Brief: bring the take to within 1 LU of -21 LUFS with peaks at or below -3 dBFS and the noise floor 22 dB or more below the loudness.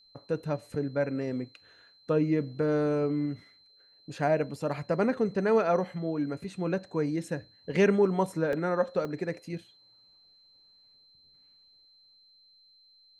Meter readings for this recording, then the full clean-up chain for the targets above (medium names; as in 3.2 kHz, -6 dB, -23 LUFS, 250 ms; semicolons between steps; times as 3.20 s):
dropouts 2; longest dropout 1.9 ms; steady tone 4.1 kHz; tone level -58 dBFS; loudness -29.5 LUFS; peak level -12.5 dBFS; loudness target -21.0 LUFS
-> interpolate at 8.53/9.05 s, 1.9 ms; band-stop 4.1 kHz, Q 30; trim +8.5 dB